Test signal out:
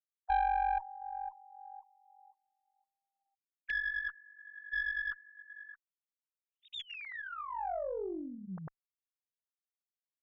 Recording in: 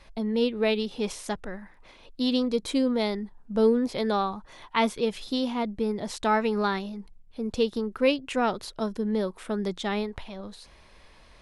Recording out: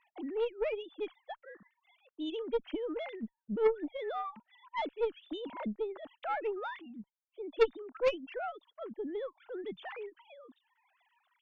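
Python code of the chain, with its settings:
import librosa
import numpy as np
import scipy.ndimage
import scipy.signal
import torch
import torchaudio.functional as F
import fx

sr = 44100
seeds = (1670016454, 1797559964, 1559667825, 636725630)

y = fx.sine_speech(x, sr)
y = fx.dereverb_blind(y, sr, rt60_s=1.2)
y = fx.cheby_harmonics(y, sr, harmonics=(3, 4, 5), levels_db=(-10, -24, -18), full_scale_db=-8.0)
y = F.gain(torch.from_numpy(y), -4.5).numpy()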